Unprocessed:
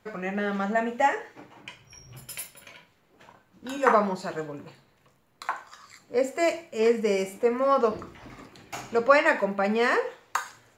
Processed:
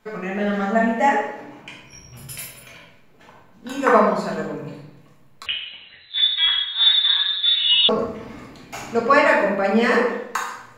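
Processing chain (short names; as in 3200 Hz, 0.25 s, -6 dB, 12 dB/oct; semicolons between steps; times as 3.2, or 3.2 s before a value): shoebox room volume 250 m³, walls mixed, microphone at 1.5 m; 5.46–7.89 inverted band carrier 4000 Hz; gain +1 dB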